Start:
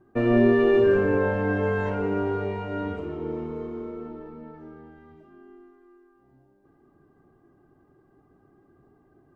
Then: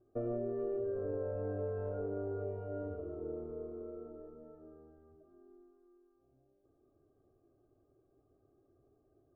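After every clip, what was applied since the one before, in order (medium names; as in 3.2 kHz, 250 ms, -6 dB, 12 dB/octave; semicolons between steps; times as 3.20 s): FFT filter 110 Hz 0 dB, 180 Hz -13 dB, 270 Hz -5 dB, 640 Hz +4 dB, 930 Hz -17 dB, 1.3 kHz -5 dB, 1.9 kHz -27 dB; compression 10:1, threshold -25 dBFS, peak gain reduction 9 dB; trim -8.5 dB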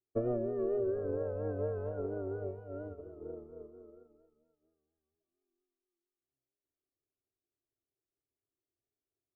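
vibrato 4.3 Hz 72 cents; upward expansion 2.5:1, over -57 dBFS; trim +6.5 dB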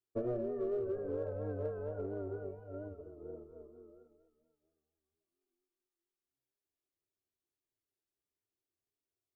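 flange 1.4 Hz, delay 9.3 ms, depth 5.7 ms, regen -36%; in parallel at -10 dB: overload inside the chain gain 34.5 dB; on the sum: trim -1.5 dB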